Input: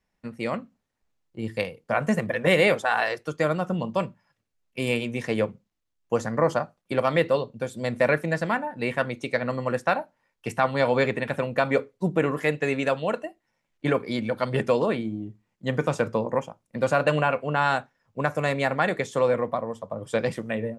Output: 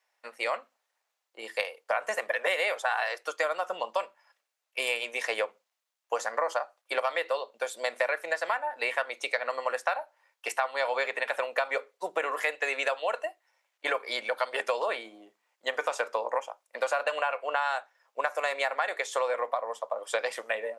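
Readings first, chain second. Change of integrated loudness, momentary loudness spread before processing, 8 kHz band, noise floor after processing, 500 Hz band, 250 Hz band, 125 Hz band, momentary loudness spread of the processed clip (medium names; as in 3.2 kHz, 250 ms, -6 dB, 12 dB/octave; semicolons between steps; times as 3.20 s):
-5.0 dB, 10 LU, +1.5 dB, -83 dBFS, -6.5 dB, -24.5 dB, under -40 dB, 7 LU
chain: high-pass 590 Hz 24 dB/octave; compression 6:1, threshold -30 dBFS, peak gain reduction 12.5 dB; trim +5 dB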